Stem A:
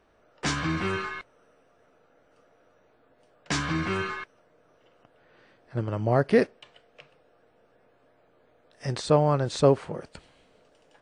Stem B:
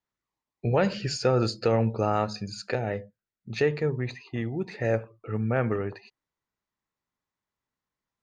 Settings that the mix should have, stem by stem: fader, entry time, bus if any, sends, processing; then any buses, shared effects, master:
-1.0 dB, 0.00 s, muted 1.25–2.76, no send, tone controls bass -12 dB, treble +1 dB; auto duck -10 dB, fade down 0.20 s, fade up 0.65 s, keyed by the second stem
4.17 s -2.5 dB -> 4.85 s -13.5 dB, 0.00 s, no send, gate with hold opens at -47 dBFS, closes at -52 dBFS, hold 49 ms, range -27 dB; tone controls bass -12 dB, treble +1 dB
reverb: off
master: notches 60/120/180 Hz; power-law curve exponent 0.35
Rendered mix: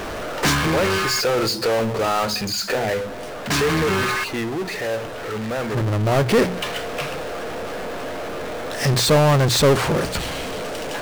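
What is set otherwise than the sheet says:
stem A: missing tone controls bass -12 dB, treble +1 dB; stem B -2.5 dB -> -11.0 dB

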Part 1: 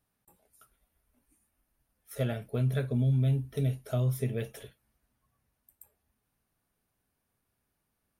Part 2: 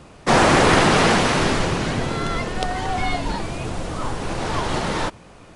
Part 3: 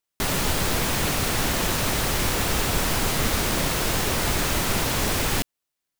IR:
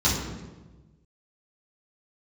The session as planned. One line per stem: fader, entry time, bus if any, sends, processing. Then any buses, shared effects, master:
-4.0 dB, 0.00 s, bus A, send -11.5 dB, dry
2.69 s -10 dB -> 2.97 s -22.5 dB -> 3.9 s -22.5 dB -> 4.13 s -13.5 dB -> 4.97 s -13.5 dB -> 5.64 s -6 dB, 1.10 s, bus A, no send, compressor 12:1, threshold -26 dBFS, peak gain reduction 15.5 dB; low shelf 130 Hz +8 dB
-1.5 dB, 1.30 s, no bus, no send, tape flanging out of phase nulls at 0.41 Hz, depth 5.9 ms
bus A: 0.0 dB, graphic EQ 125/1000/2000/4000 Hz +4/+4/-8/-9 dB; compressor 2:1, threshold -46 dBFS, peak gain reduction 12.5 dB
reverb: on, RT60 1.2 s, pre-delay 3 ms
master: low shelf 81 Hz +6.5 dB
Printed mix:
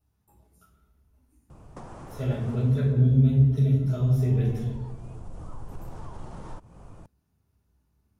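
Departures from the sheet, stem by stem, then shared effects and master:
stem 2: entry 1.10 s -> 1.50 s; stem 3: muted

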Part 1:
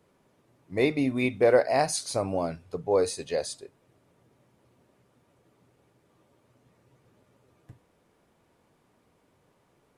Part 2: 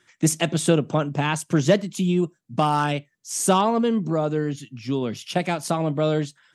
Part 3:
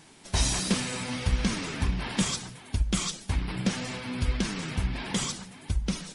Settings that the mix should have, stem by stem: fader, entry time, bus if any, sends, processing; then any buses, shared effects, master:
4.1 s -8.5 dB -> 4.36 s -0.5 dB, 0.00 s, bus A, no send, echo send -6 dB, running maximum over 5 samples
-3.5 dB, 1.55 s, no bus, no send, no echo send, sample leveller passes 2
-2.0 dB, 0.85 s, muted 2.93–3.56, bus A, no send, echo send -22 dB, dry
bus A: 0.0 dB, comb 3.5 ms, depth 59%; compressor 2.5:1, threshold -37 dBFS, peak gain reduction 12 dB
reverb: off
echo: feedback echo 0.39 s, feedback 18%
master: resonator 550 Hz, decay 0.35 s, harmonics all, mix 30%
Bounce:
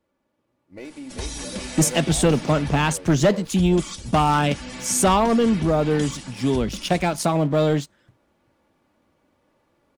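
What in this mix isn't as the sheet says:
stem 3 -2.0 dB -> +8.0 dB; master: missing resonator 550 Hz, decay 0.35 s, harmonics all, mix 30%

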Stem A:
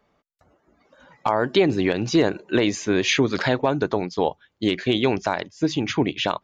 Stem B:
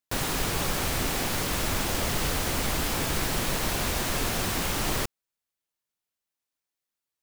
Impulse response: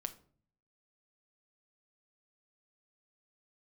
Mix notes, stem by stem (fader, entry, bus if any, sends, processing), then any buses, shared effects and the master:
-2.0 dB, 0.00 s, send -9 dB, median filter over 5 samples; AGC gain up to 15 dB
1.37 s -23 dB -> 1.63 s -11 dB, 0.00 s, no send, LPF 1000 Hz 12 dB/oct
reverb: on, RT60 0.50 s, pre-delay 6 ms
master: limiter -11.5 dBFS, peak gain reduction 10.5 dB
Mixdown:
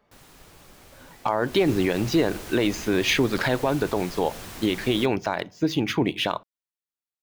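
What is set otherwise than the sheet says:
stem A: missing AGC gain up to 15 dB; stem B: missing LPF 1000 Hz 12 dB/oct

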